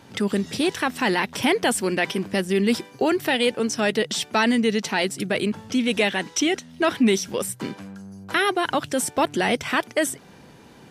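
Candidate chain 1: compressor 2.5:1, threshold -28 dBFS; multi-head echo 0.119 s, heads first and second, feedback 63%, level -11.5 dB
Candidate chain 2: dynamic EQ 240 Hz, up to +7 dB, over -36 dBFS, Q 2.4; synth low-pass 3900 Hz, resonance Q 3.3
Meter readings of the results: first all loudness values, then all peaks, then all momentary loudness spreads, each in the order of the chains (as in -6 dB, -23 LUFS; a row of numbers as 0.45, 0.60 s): -28.5, -19.0 LUFS; -13.0, -3.5 dBFS; 5, 7 LU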